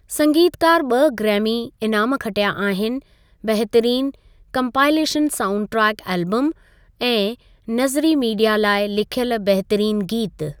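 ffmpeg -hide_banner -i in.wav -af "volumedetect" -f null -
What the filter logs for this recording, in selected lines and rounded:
mean_volume: -19.2 dB
max_volume: -3.7 dB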